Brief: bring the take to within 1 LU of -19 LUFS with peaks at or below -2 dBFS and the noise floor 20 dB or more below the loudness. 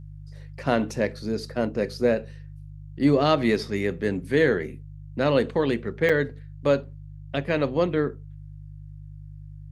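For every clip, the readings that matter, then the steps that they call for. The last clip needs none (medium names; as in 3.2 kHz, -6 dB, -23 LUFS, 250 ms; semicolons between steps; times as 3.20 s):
dropouts 1; longest dropout 5.2 ms; hum 50 Hz; highest harmonic 150 Hz; hum level -38 dBFS; loudness -25.0 LUFS; peak level -7.0 dBFS; loudness target -19.0 LUFS
-> interpolate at 6.09 s, 5.2 ms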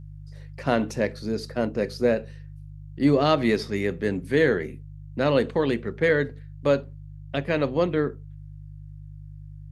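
dropouts 0; hum 50 Hz; highest harmonic 150 Hz; hum level -38 dBFS
-> de-hum 50 Hz, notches 3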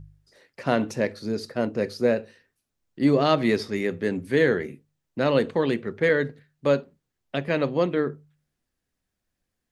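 hum not found; loudness -25.0 LUFS; peak level -7.0 dBFS; loudness target -19.0 LUFS
-> trim +6 dB; peak limiter -2 dBFS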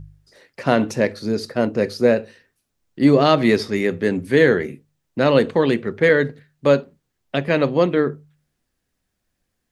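loudness -19.0 LUFS; peak level -2.0 dBFS; noise floor -76 dBFS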